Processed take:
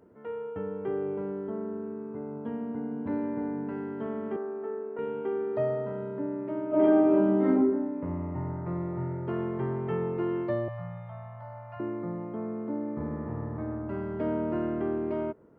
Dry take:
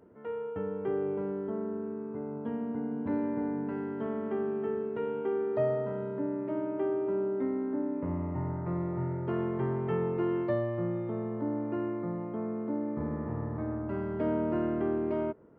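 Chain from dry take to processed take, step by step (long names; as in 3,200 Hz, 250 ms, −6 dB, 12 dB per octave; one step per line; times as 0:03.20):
0:04.36–0:04.99: three-way crossover with the lows and the highs turned down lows −19 dB, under 310 Hz, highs −23 dB, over 2,000 Hz
0:06.68–0:07.49: thrown reverb, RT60 0.8 s, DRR −11 dB
0:10.68–0:11.80: elliptic band-stop filter 160–640 Hz, stop band 40 dB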